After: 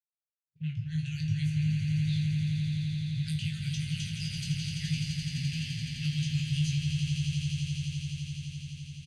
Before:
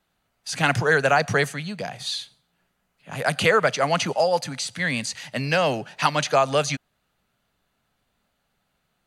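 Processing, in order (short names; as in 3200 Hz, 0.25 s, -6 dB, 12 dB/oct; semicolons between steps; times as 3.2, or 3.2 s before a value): opening faded in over 1.92 s; low-pass opened by the level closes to 650 Hz, open at -18 dBFS; elliptic band-stop 150–2800 Hz, stop band 50 dB; doubler 20 ms -4 dB; frequency-shifting echo 0.154 s, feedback 65%, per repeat -53 Hz, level -17 dB; compressor, threshold -29 dBFS, peak gain reduction 9 dB; bell 110 Hz +13.5 dB 1.5 oct; resonator 78 Hz, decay 0.38 s, harmonics all, mix 80%; swelling echo 85 ms, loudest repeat 8, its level -8 dB; expander -44 dBFS; gain -1 dB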